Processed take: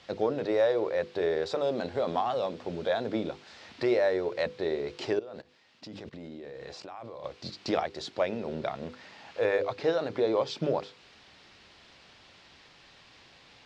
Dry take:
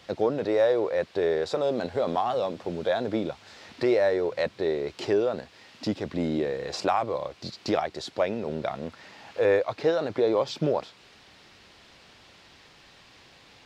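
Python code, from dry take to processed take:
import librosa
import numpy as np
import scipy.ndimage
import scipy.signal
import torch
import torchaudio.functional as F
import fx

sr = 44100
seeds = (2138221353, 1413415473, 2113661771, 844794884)

y = fx.high_shelf(x, sr, hz=3400.0, db=5.5)
y = fx.hum_notches(y, sr, base_hz=50, count=10)
y = fx.level_steps(y, sr, step_db=20, at=(5.19, 7.24))
y = fx.air_absorb(y, sr, metres=80.0)
y = y * 10.0 ** (-2.5 / 20.0)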